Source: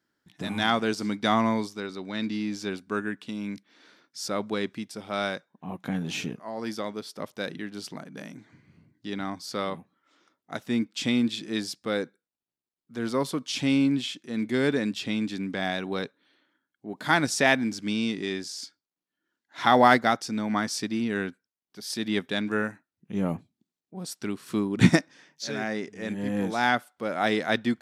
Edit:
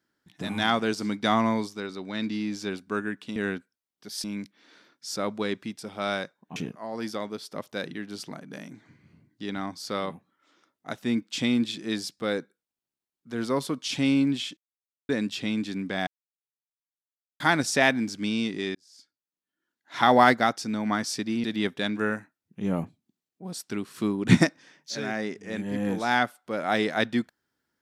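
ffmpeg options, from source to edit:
-filter_complex "[0:a]asplit=10[a][b][c][d][e][f][g][h][i][j];[a]atrim=end=3.362[k];[b]atrim=start=21.078:end=21.962[l];[c]atrim=start=3.358:end=5.682[m];[d]atrim=start=6.198:end=14.21,asetpts=PTS-STARTPTS,afade=t=out:st=8.008:d=0.004:c=hsin[n];[e]atrim=start=14.21:end=14.73,asetpts=PTS-STARTPTS,volume=0[o];[f]atrim=start=14.73:end=15.71,asetpts=PTS-STARTPTS,afade=t=in:d=0.004:c=hsin,afade=t=out:st=0.976:d=0.004:c=hsin[p];[g]atrim=start=15.71:end=17.04,asetpts=PTS-STARTPTS,volume=0[q];[h]atrim=start=17.04:end=18.39,asetpts=PTS-STARTPTS,afade=t=in:d=0.004:c=hsin,afade=t=out:st=1.346:d=0.004:c=hsin[r];[i]atrim=start=18.39:end=21.082,asetpts=PTS-STARTPTS,afade=t=in:d=1.22[s];[j]atrim=start=21.958[t];[k][l]acrossfade=d=0.004:c1=hsin:c2=hsin[u];[u][m]acrossfade=d=0.004:c1=hsin:c2=hsin[v];[n][o][p][q][r][s]concat=n=6:v=0:a=1[w];[v][w]acrossfade=d=0.004:c1=hsin:c2=hsin[x];[x][t]acrossfade=d=0.004:c1=hsin:c2=hsin"

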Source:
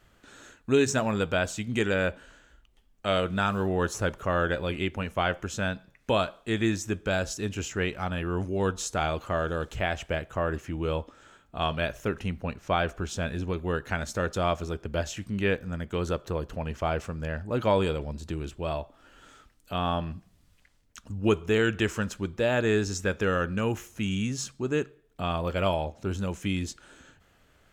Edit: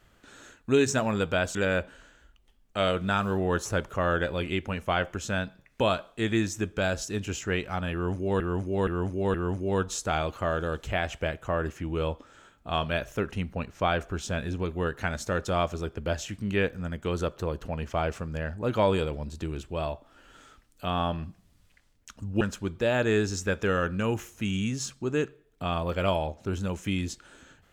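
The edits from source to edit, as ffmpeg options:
-filter_complex "[0:a]asplit=6[a][b][c][d][e][f];[a]atrim=end=1.552[g];[b]atrim=start=1.838:end=8.692[h];[c]atrim=start=8.218:end=8.692[i];[d]atrim=start=8.218:end=8.692[j];[e]atrim=start=8.218:end=21.292[k];[f]atrim=start=21.988[l];[g][h]acrossfade=d=0.004:c1=hsin:c2=hsin[m];[m][i]acrossfade=d=0.004:c1=hsin:c2=hsin[n];[n][j]acrossfade=d=0.004:c1=hsin:c2=hsin[o];[o][k]acrossfade=d=0.004:c1=hsin:c2=hsin[p];[p][l]acrossfade=d=0.004:c1=hsin:c2=hsin"

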